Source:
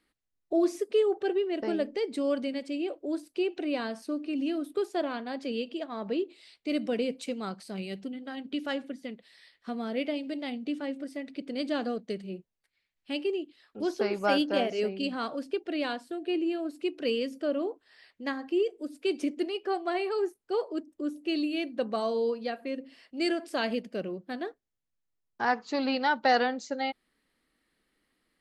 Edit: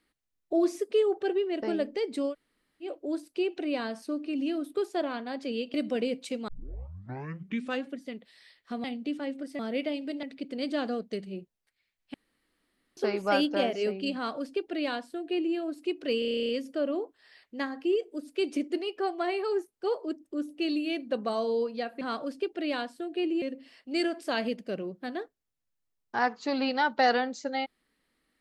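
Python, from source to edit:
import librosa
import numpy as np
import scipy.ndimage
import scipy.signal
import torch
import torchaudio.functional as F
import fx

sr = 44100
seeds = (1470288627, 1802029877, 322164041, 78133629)

y = fx.edit(x, sr, fx.room_tone_fill(start_s=2.3, length_s=0.55, crossfade_s=0.1),
    fx.cut(start_s=5.74, length_s=0.97),
    fx.tape_start(start_s=7.45, length_s=1.37),
    fx.move(start_s=9.81, length_s=0.64, to_s=11.2),
    fx.room_tone_fill(start_s=13.11, length_s=0.83),
    fx.duplicate(start_s=15.12, length_s=1.41, to_s=22.68),
    fx.stutter(start_s=17.16, slice_s=0.03, count=11), tone=tone)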